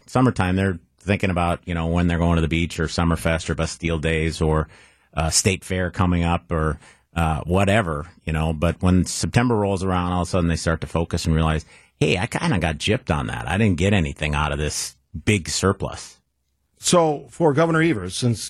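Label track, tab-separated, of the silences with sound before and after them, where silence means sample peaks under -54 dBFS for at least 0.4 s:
16.200000	16.770000	silence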